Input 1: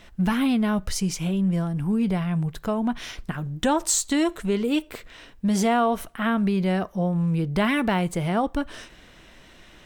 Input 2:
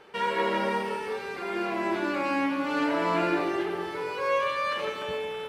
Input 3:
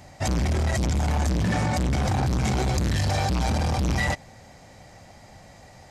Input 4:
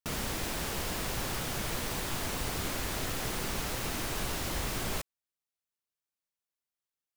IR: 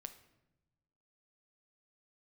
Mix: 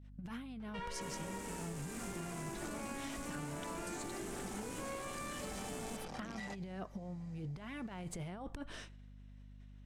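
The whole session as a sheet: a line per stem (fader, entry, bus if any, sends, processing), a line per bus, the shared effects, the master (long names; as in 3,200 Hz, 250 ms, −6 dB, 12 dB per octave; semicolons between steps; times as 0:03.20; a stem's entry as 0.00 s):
−12.5 dB, 0.00 s, no send, downward expander −37 dBFS; compressor whose output falls as the input rises −27 dBFS, ratio −0.5
−11.0 dB, 0.60 s, no send, no processing
−17.0 dB, 2.40 s, no send, high-pass filter 170 Hz 24 dB per octave
−3.5 dB, 0.95 s, no send, octave-band graphic EQ 250/4,000/8,000 Hz +11/−9/+12 dB; soft clipping −35 dBFS, distortion −8 dB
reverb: not used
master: mains hum 50 Hz, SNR 17 dB; low-pass filter 11,000 Hz 12 dB per octave; downward compressor, threshold −40 dBFS, peak gain reduction 10.5 dB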